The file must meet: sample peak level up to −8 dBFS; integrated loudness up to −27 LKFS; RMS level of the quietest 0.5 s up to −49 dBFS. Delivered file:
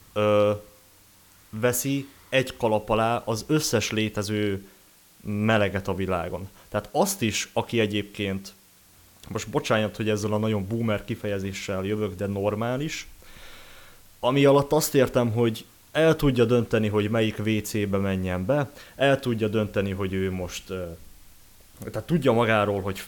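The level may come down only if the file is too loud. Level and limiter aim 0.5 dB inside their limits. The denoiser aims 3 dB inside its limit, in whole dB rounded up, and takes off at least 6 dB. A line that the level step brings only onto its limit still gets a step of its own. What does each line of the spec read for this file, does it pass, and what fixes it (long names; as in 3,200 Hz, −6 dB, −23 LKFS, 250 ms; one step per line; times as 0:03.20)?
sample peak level −8.5 dBFS: in spec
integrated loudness −25.0 LKFS: out of spec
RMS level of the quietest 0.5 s −55 dBFS: in spec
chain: level −2.5 dB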